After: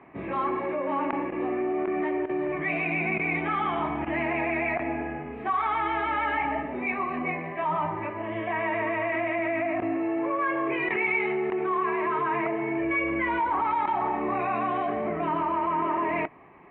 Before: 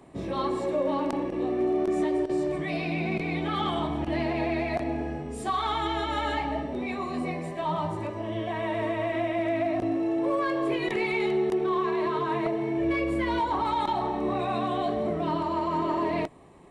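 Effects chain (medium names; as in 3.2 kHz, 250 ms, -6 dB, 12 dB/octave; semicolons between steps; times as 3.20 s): tilt EQ +3 dB/octave; in parallel at -2.5 dB: compressor with a negative ratio -31 dBFS; on the sum: elliptic low-pass 2.4 kHz, stop band 60 dB; peaking EQ 540 Hz -5 dB 0.6 oct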